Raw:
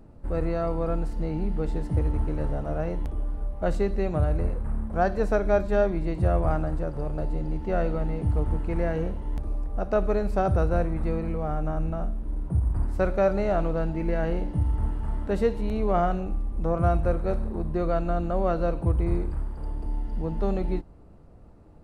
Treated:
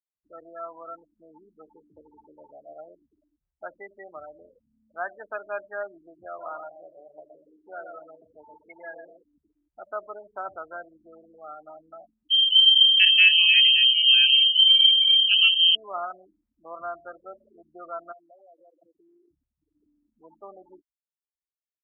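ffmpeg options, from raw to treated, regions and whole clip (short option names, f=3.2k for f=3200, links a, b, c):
-filter_complex "[0:a]asettb=1/sr,asplit=3[a][b][c];[a]atrim=end=6.264[d];[b]atrim=start=6.26:end=9.23,asetpts=PTS-STARTPTS,afade=t=in:d=0.004:c=qsin,afade=t=out:st=2.966:d=0.004:c=qsin,lowshelf=f=170:g=-10,aecho=1:1:120|240|360|480:0.562|0.18|0.0576|0.0184,atrim=end_sample=130977[e];[c]atrim=start=9.226[f];[d][e]acrossfade=d=0.004:c1=hsin:c2=qsin[g];[g][f]acrossfade=d=0.004:c1=qsin:c2=hsin,asettb=1/sr,asplit=3[h][i][j];[h]atrim=end=12.304[k];[i]atrim=start=12.3:end=15.75,asetpts=PTS-STARTPTS,afade=t=in:d=0.004:c=qsin,afade=t=out:st=3.446:d=0.004:c=qsin,lowshelf=f=200:g=5.5,lowpass=f=2.7k:t=q:w=0.5098,lowpass=f=2.7k:t=q:w=0.6013,lowpass=f=2.7k:t=q:w=0.9,lowpass=f=2.7k:t=q:w=2.563,afreqshift=-3200[l];[j]atrim=start=15.746[m];[k][l]acrossfade=d=0.004:c1=hsin:c2=qsin[n];[n][m]acrossfade=d=0.004:c1=qsin:c2=hsin,asettb=1/sr,asplit=3[o][p][q];[o]atrim=end=18.124[r];[p]atrim=start=18.12:end=19.31,asetpts=PTS-STARTPTS,afade=t=in:d=0.004:c=qsin,afade=t=out:st=1.186:d=0.004:c=qsin,highpass=220,acompressor=threshold=-35dB:ratio=12:attack=3.2:release=140:knee=1:detection=peak[s];[q]atrim=start=19.306[t];[r][s]acrossfade=d=0.004:c1=hsin:c2=qsin[u];[u][t]acrossfade=d=0.004:c1=qsin:c2=hsin,afftfilt=real='re*gte(hypot(re,im),0.0501)':imag='im*gte(hypot(re,im),0.0501)':win_size=1024:overlap=0.75,highpass=1.5k,aecho=1:1:3.1:0.31,volume=3.5dB"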